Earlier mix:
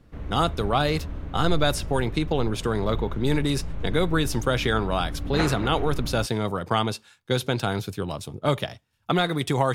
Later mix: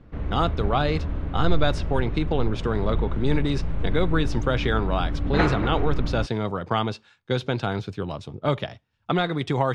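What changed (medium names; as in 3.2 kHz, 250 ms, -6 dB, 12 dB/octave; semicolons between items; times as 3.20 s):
background +5.5 dB; master: add distance through air 140 m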